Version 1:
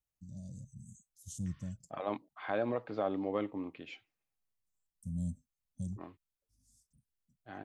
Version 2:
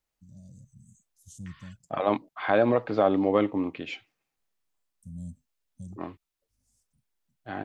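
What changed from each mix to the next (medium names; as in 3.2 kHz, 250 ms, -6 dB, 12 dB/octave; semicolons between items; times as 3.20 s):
first voice -3.0 dB; second voice +11.5 dB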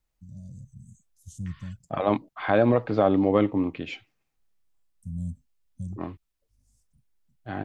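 master: add bass shelf 160 Hz +12 dB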